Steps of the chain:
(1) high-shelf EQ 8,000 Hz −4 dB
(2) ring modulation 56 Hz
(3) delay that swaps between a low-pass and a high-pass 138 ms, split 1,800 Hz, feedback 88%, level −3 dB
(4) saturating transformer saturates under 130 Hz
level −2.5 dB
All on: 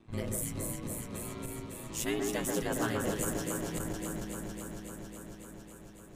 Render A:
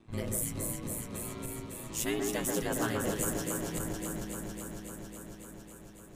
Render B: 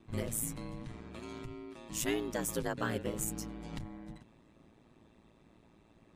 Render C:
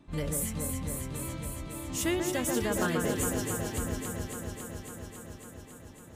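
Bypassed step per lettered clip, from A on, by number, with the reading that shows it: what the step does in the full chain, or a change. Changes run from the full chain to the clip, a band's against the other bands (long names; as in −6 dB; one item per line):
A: 1, 8 kHz band +2.0 dB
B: 3, change in momentary loudness spread −2 LU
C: 2, change in momentary loudness spread +2 LU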